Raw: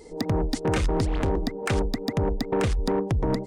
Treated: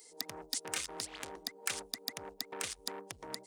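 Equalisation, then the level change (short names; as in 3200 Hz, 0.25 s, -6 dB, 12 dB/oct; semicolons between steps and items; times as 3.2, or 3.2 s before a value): differentiator; +2.5 dB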